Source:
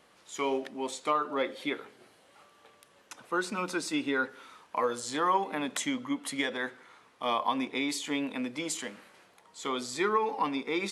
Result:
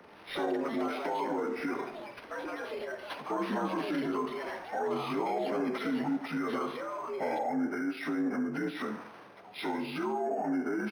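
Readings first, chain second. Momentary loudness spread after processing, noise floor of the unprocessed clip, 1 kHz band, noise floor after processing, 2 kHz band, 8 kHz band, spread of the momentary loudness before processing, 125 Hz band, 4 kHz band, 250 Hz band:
8 LU, -62 dBFS, -3.0 dB, -51 dBFS, -4.0 dB, -17.0 dB, 9 LU, +3.0 dB, -8.0 dB, +2.0 dB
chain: frequency axis rescaled in octaves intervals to 81%; bass shelf 270 Hz +5 dB; in parallel at +2 dB: compressor with a negative ratio -34 dBFS; on the sum: peak limiter -25 dBFS, peak gain reduction 10.5 dB; low-pass that closes with the level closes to 1.5 kHz, closed at -28 dBFS; on a send: feedback delay 73 ms, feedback 46%, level -13 dB; on the sum: ever faster or slower copies 105 ms, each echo +7 st, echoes 2, each echo -6 dB; decimation joined by straight lines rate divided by 6×

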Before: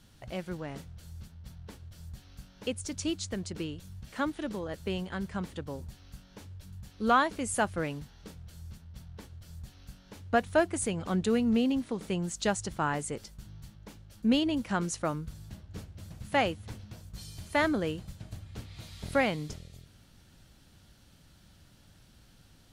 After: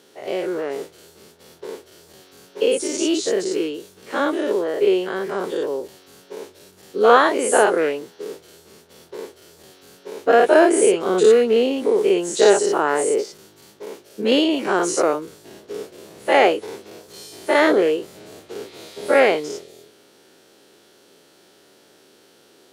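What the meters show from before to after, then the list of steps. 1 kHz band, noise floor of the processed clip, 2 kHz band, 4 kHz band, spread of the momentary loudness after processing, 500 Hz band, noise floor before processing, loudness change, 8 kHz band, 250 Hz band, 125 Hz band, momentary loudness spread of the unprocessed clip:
+11.5 dB, -54 dBFS, +11.0 dB, +11.0 dB, 22 LU, +17.5 dB, -59 dBFS, +13.0 dB, +11.5 dB, +7.5 dB, no reading, 21 LU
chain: every event in the spectrogram widened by 120 ms; resonant high-pass 400 Hz, resonance Q 4.9; trim +4 dB

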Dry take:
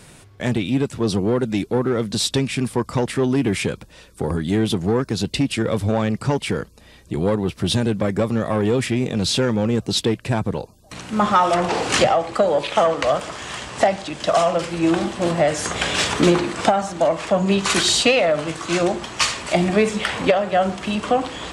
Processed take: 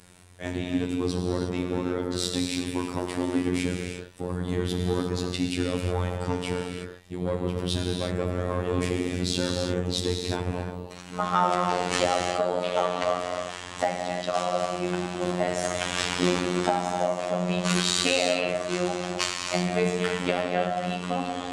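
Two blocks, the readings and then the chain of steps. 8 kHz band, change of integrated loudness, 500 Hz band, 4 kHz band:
-6.5 dB, -7.0 dB, -7.5 dB, -6.5 dB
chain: Chebyshev shaper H 3 -21 dB, 5 -31 dB, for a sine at -3 dBFS; gated-style reverb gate 380 ms flat, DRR 0.5 dB; robot voice 89.5 Hz; trim -6 dB

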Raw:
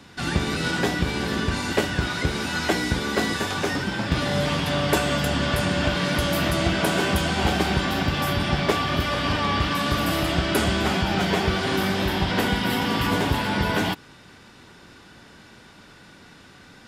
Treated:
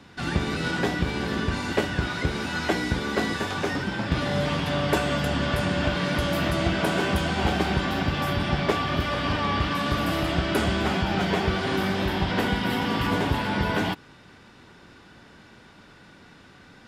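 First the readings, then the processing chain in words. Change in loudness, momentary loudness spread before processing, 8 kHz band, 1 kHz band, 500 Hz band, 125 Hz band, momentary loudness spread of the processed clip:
-2.0 dB, 3 LU, -7.0 dB, -2.0 dB, -1.5 dB, -1.5 dB, 3 LU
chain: treble shelf 5 kHz -8 dB; trim -1.5 dB

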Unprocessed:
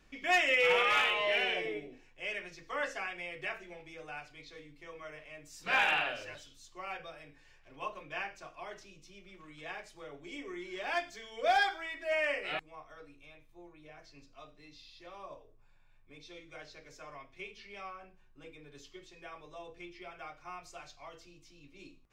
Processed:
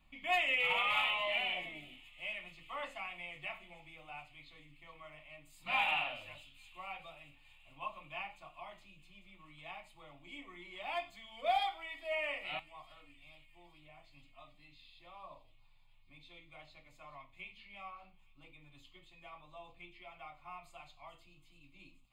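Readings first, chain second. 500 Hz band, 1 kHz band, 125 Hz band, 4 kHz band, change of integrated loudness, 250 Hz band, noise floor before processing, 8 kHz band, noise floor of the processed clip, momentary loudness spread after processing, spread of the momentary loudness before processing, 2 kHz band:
-8.0 dB, -3.5 dB, -3.5 dB, -2.5 dB, -4.0 dB, -9.0 dB, -62 dBFS, under -10 dB, -63 dBFS, 24 LU, 24 LU, -5.0 dB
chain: static phaser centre 1.6 kHz, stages 6; flange 0.7 Hz, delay 8.1 ms, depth 6.2 ms, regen -74%; feedback echo behind a high-pass 429 ms, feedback 76%, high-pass 4.9 kHz, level -13 dB; trim +2.5 dB

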